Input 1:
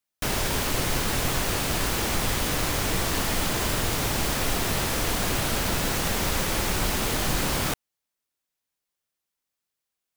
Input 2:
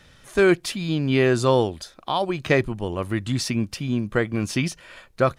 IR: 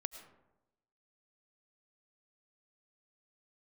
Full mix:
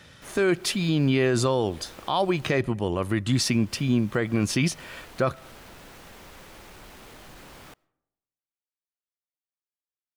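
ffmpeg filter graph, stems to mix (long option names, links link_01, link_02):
-filter_complex "[0:a]bass=frequency=250:gain=-4,treble=frequency=4000:gain=-6,asoftclip=type=tanh:threshold=-22.5dB,volume=-18dB,asplit=3[link_01][link_02][link_03];[link_01]atrim=end=2.57,asetpts=PTS-STARTPTS,afade=type=out:start_time=2.566:duration=0.004:curve=hsin[link_04];[link_02]atrim=start=2.57:end=3.32,asetpts=PTS-STARTPTS,volume=0[link_05];[link_03]atrim=start=3.32,asetpts=PTS-STARTPTS,afade=type=in:duration=0.004:curve=hsin[link_06];[link_04][link_05][link_06]concat=n=3:v=0:a=1,asplit=2[link_07][link_08];[link_08]volume=-15.5dB[link_09];[1:a]highpass=75,volume=2dB,asplit=3[link_10][link_11][link_12];[link_11]volume=-21dB[link_13];[link_12]apad=whole_len=448180[link_14];[link_07][link_14]sidechaincompress=threshold=-31dB:ratio=3:attack=16:release=155[link_15];[2:a]atrim=start_sample=2205[link_16];[link_09][link_13]amix=inputs=2:normalize=0[link_17];[link_17][link_16]afir=irnorm=-1:irlink=0[link_18];[link_15][link_10][link_18]amix=inputs=3:normalize=0,alimiter=limit=-13.5dB:level=0:latency=1:release=48"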